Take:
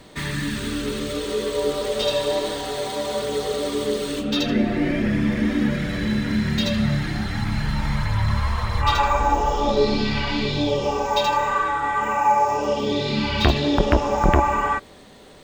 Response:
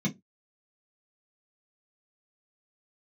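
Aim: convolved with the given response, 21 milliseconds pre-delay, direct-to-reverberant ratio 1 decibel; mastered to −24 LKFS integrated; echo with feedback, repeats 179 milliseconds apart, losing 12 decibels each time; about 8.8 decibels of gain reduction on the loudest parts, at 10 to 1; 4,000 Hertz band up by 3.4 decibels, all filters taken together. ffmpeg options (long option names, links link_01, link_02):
-filter_complex "[0:a]equalizer=frequency=4000:width_type=o:gain=4,acompressor=threshold=-20dB:ratio=10,aecho=1:1:179|358|537:0.251|0.0628|0.0157,asplit=2[link_01][link_02];[1:a]atrim=start_sample=2205,adelay=21[link_03];[link_02][link_03]afir=irnorm=-1:irlink=0,volume=-6.5dB[link_04];[link_01][link_04]amix=inputs=2:normalize=0,volume=-11.5dB"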